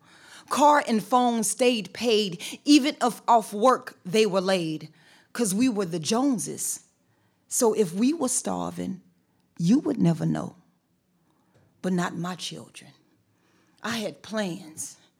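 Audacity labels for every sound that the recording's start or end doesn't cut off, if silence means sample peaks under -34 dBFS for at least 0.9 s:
11.840000	12.790000	sound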